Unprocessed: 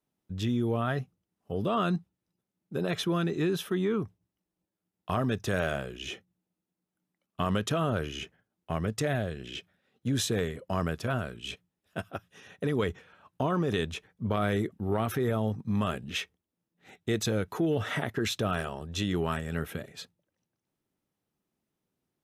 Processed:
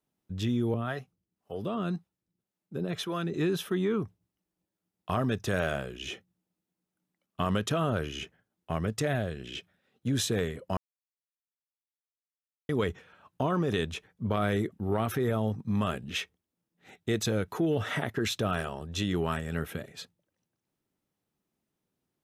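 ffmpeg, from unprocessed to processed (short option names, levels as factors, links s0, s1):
-filter_complex "[0:a]asettb=1/sr,asplit=3[s0][s1][s2];[s0]atrim=end=0.744[s3];[s1]atrim=start=0.74:end=3.34,asetpts=PTS-STARTPTS,afade=t=in:d=0.004:c=qsin,afade=t=out:st=2.596:d=0.004:c=qsin,acrossover=split=420[s4][s5];[s4]aeval=exprs='val(0)*(1-0.7/2+0.7/2*cos(2*PI*1.9*n/s))':c=same[s6];[s5]aeval=exprs='val(0)*(1-0.7/2-0.7/2*cos(2*PI*1.9*n/s))':c=same[s7];[s6][s7]amix=inputs=2:normalize=0[s8];[s2]atrim=start=3.336[s9];[s3][s8]acrossfade=d=0.004:c1=hsin:c2=qsin[s10];[s10][s9]acrossfade=d=0.004:c1=qsin:c2=hsin,asplit=3[s11][s12][s13];[s11]atrim=end=10.77,asetpts=PTS-STARTPTS,afade=t=out:st=10.766:d=0.004:c=hsin[s14];[s12]atrim=start=10.77:end=12.69,asetpts=PTS-STARTPTS,volume=0[s15];[s13]atrim=start=12.69,asetpts=PTS-STARTPTS,afade=t=in:d=0.004:c=hsin[s16];[s14][s15][s16]concat=n=3:v=0:a=1"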